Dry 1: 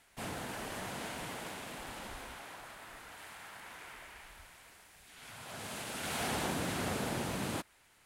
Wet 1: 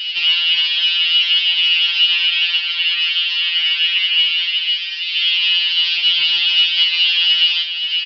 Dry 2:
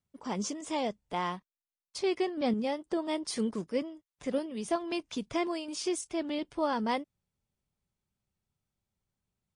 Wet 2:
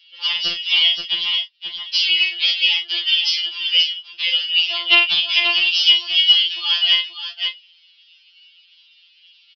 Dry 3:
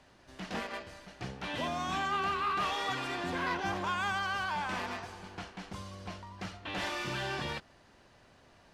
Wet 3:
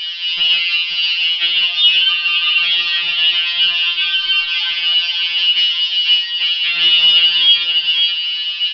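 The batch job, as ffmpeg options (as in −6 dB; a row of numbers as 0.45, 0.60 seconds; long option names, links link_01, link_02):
-filter_complex "[0:a]aemphasis=mode=production:type=75fm,acompressor=threshold=-53dB:ratio=2.5,aresample=16000,aeval=exprs='(mod(53.1*val(0)+1,2)-1)/53.1':channel_layout=same,aresample=44100,highpass=frequency=2900:width_type=q:width=13,aeval=exprs='0.02*(abs(mod(val(0)/0.02+3,4)-2)-1)':channel_layout=same,asplit=2[link_01][link_02];[link_02]adelay=26,volume=-9dB[link_03];[link_01][link_03]amix=inputs=2:normalize=0,aecho=1:1:55|530:0.376|0.376,aresample=11025,aresample=44100,alimiter=level_in=34.5dB:limit=-1dB:release=50:level=0:latency=1,afftfilt=real='re*2.83*eq(mod(b,8),0)':imag='im*2.83*eq(mod(b,8),0)':win_size=2048:overlap=0.75,volume=-3.5dB"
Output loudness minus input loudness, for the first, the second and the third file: +27.0, +18.0, +23.0 LU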